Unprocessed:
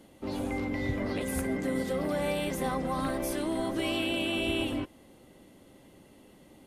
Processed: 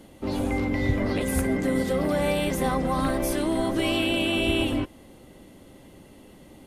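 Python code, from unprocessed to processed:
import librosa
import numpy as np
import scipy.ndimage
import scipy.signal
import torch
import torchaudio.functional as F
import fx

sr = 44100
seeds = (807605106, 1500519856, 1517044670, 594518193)

y = fx.low_shelf(x, sr, hz=91.0, db=6.5)
y = y * librosa.db_to_amplitude(5.5)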